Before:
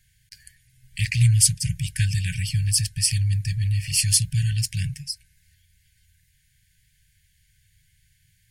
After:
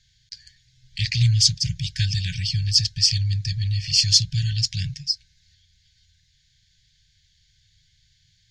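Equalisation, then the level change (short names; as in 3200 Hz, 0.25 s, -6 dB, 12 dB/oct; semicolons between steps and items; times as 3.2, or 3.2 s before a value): air absorption 190 m; band shelf 4900 Hz +15.5 dB 1.3 oct; high shelf 8400 Hz +9.5 dB; -1.0 dB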